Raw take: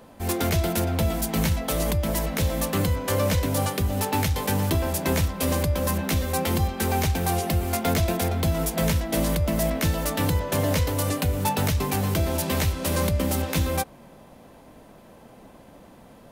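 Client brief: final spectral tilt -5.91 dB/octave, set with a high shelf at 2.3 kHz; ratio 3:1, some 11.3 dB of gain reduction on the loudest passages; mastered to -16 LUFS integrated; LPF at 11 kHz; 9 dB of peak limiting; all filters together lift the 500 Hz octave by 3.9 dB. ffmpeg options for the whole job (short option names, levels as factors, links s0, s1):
-af "lowpass=11000,equalizer=f=500:t=o:g=5,highshelf=f=2300:g=-3,acompressor=threshold=0.02:ratio=3,volume=14.1,alimiter=limit=0.447:level=0:latency=1"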